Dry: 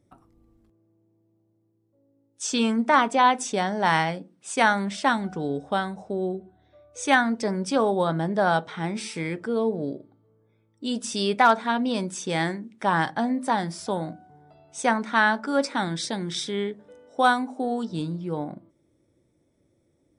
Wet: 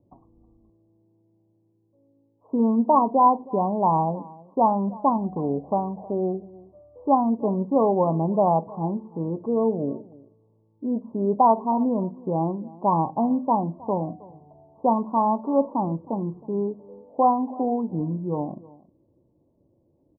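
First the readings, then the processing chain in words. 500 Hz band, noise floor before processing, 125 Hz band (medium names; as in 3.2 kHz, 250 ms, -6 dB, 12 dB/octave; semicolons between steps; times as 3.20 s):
+2.5 dB, -69 dBFS, +3.0 dB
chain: Chebyshev low-pass 1.1 kHz, order 8; delay 316 ms -21.5 dB; trim +3 dB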